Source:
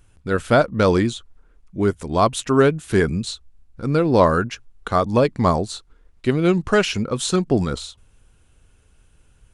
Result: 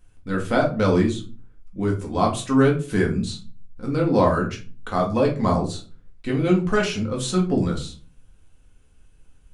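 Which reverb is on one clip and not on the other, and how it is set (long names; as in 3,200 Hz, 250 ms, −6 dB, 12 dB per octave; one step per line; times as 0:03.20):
rectangular room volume 200 cubic metres, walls furnished, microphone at 2 metres
level −7.5 dB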